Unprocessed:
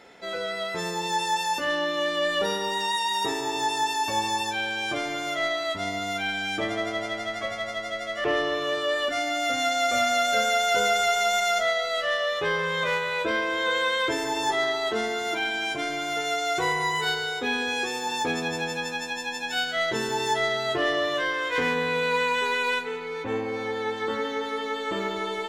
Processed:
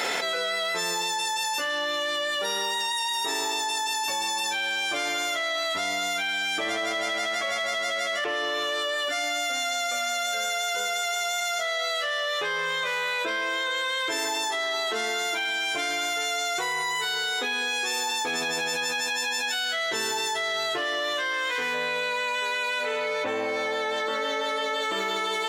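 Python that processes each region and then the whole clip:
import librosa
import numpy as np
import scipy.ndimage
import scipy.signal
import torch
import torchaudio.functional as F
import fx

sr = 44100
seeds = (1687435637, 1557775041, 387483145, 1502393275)

y = fx.high_shelf(x, sr, hz=11000.0, db=-6.0, at=(21.73, 24.81), fade=0.02)
y = fx.dmg_tone(y, sr, hz=600.0, level_db=-33.0, at=(21.73, 24.81), fade=0.02)
y = fx.highpass(y, sr, hz=790.0, slope=6)
y = fx.high_shelf(y, sr, hz=4900.0, db=7.0)
y = fx.env_flatten(y, sr, amount_pct=100)
y = F.gain(torch.from_numpy(y), -5.5).numpy()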